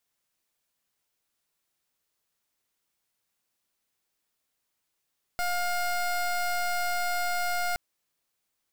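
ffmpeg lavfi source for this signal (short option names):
-f lavfi -i "aevalsrc='0.0398*(2*lt(mod(709*t,1),0.22)-1)':d=2.37:s=44100"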